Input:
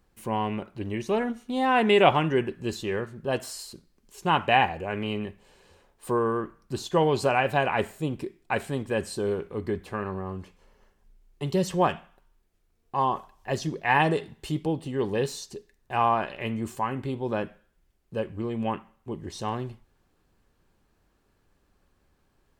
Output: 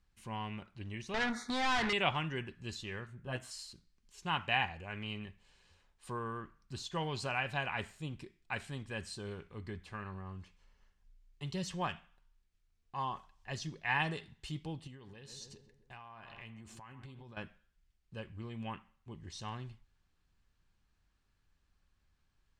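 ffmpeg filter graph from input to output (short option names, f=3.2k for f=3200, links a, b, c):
-filter_complex "[0:a]asettb=1/sr,asplit=3[a][b][c];[a]atrim=end=1.144[d];[b]atrim=start=1.14:end=1.93,asetpts=PTS-STARTPTS,afade=t=in:d=0.004:c=qsin,afade=t=out:st=0.786:d=0.004:c=qsin,asuperstop=centerf=2800:order=8:qfactor=1.9,acompressor=threshold=-29dB:ratio=2:attack=3.2:release=140:knee=1:detection=peak,asplit=2[e][f];[f]highpass=f=720:p=1,volume=30dB,asoftclip=type=tanh:threshold=-12.5dB[g];[e][g]amix=inputs=2:normalize=0,lowpass=f=4.3k:p=1,volume=-6dB[h];[c]atrim=start=1.926[i];[d][h]acrossfade=d=0.004:c1=hsin:c2=qsin[j];[j][i]acrossfade=d=0.004:c1=qsin:c2=hsin,asettb=1/sr,asplit=3[k][l][m];[k]atrim=end=3.074[n];[l]atrim=start=3.07:end=3.51,asetpts=PTS-STARTPTS,afade=t=in:d=0.004:c=qsin,afade=t=out:st=0.436:d=0.004:c=qsin,equalizer=f=4.7k:t=o:w=0.93:g=-11.5,asplit=2[o][p];[p]adelay=16,volume=-4dB[q];[o][q]amix=inputs=2:normalize=0,atrim=end_sample=19404[r];[m]atrim=start=3.506[s];[n][r]acrossfade=d=0.004:c1=hsin:c2=qsin[t];[t][s]acrossfade=d=0.004:c1=qsin:c2=hsin,asettb=1/sr,asplit=3[u][v][w];[u]atrim=end=14.874[x];[v]atrim=start=14.87:end=17.37,asetpts=PTS-STARTPTS,afade=t=in:d=0.004:c=qsin,afade=t=out:st=2.496:d=0.004:c=qsin,asplit=2[y][z];[z]adelay=131,lowpass=f=1.5k:p=1,volume=-13.5dB,asplit=2[aa][ab];[ab]adelay=131,lowpass=f=1.5k:p=1,volume=0.53,asplit=2[ac][ad];[ad]adelay=131,lowpass=f=1.5k:p=1,volume=0.53,asplit=2[ae][af];[af]adelay=131,lowpass=f=1.5k:p=1,volume=0.53,asplit=2[ag][ah];[ah]adelay=131,lowpass=f=1.5k:p=1,volume=0.53[ai];[y][aa][ac][ae][ag][ai]amix=inputs=6:normalize=0,atrim=end_sample=110250,acompressor=threshold=-35dB:ratio=12:attack=3.2:release=140:knee=1:detection=peak[aj];[w]atrim=start=17.366[ak];[x][aj]acrossfade=d=0.004:c1=hsin:c2=qsin[al];[al][ak]acrossfade=d=0.004:c1=qsin:c2=hsin,lowpass=6.8k,equalizer=f=440:t=o:w=2.5:g=-14.5,volume=-4.5dB"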